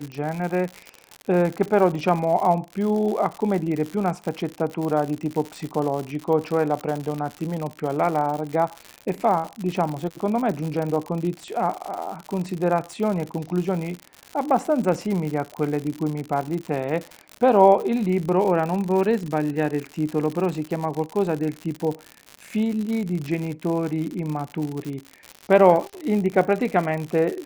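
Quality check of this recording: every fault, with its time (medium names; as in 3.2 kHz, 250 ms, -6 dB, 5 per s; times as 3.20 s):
crackle 110 per s -27 dBFS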